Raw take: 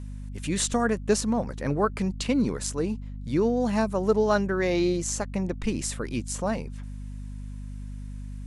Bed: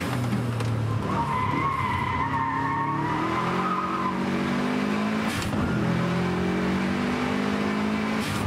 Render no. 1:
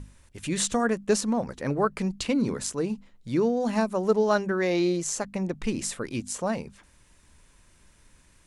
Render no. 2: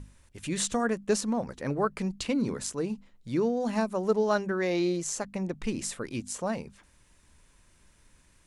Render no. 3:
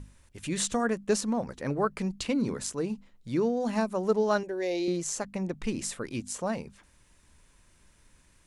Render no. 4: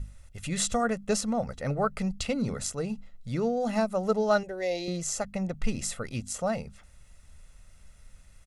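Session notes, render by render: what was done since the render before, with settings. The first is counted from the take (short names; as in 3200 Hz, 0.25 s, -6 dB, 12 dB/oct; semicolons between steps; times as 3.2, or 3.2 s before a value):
notches 50/100/150/200/250 Hz
gain -3 dB
4.43–4.88 fixed phaser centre 520 Hz, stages 4
low shelf 70 Hz +8.5 dB; comb 1.5 ms, depth 62%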